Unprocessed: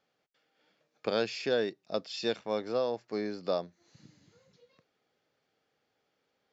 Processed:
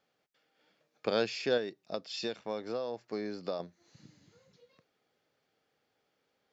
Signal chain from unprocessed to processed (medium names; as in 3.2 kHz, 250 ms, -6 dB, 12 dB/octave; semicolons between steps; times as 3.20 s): 1.57–3.60 s: compression, threshold -32 dBFS, peak gain reduction 7.5 dB